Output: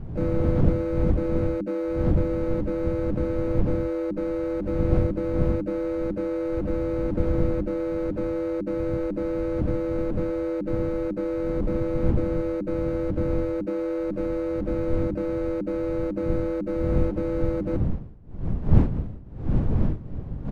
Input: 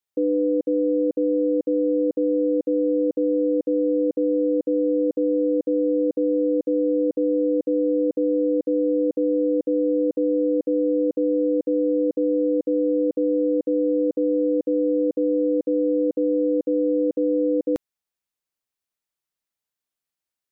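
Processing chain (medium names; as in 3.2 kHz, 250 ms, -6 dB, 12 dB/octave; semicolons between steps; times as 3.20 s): median filter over 41 samples; wind noise 150 Hz -24 dBFS; hum notches 50/100/150/200/250/300/350/400 Hz; harmony voices -7 st 0 dB, +3 st -10 dB; trim -5.5 dB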